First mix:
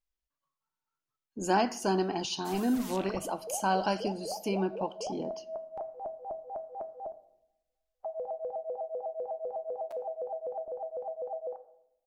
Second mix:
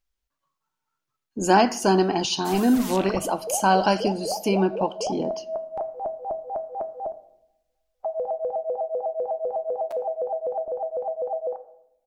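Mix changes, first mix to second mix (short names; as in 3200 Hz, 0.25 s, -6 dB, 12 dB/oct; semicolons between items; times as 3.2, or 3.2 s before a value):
speech +9.0 dB; background +9.0 dB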